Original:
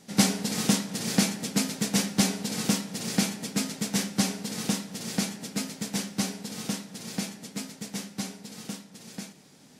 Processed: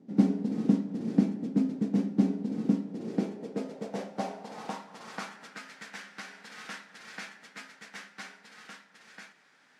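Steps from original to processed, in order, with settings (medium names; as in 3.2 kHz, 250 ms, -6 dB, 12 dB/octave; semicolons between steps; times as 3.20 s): band-pass sweep 280 Hz -> 1.6 kHz, 2.75–5.72 s; 5.44–6.52 s: compression 3:1, threshold -46 dBFS, peak gain reduction 6 dB; trim +5.5 dB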